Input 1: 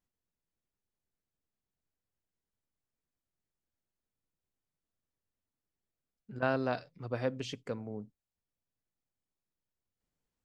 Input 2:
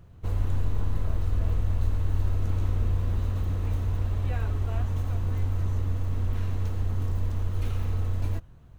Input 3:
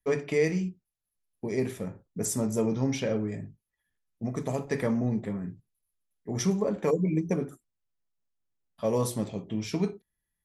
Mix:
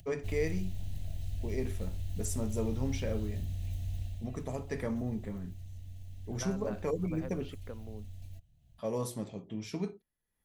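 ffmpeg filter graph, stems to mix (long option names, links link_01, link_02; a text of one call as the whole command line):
ffmpeg -i stem1.wav -i stem2.wav -i stem3.wav -filter_complex "[0:a]lowpass=2900,acompressor=threshold=-34dB:ratio=6,volume=-5.5dB[link_01];[1:a]firequalizer=gain_entry='entry(150,0);entry(430,-19);entry(670,-2);entry(1100,-29);entry(1800,-7);entry(3000,3);entry(9100,7)':delay=0.05:min_phase=1,acrossover=split=110|1400[link_02][link_03][link_04];[link_02]acompressor=threshold=-27dB:ratio=4[link_05];[link_03]acompressor=threshold=-38dB:ratio=4[link_06];[link_04]acompressor=threshold=-49dB:ratio=4[link_07];[link_05][link_06][link_07]amix=inputs=3:normalize=0,volume=-6.5dB,afade=type=out:start_time=4.01:duration=0.27:silence=0.354813[link_08];[2:a]volume=-7.5dB[link_09];[link_01][link_08][link_09]amix=inputs=3:normalize=0,acompressor=mode=upward:threshold=-52dB:ratio=2.5" out.wav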